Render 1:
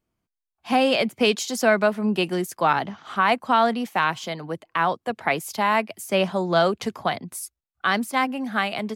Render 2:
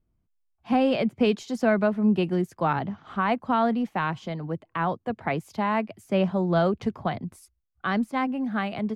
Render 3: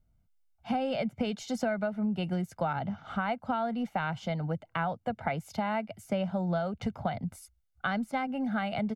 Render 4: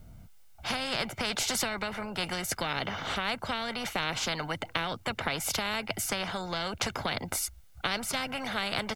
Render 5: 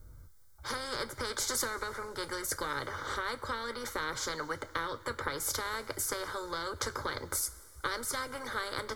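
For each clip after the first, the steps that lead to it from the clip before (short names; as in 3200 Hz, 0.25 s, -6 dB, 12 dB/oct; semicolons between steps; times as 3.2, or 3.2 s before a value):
RIAA curve playback; gain -5.5 dB
comb 1.4 ms, depth 63%; compressor 10:1, threshold -27 dBFS, peak gain reduction 13 dB
spectral compressor 4:1; gain +5.5 dB
fixed phaser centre 720 Hz, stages 6; two-slope reverb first 0.21 s, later 2.6 s, from -18 dB, DRR 9.5 dB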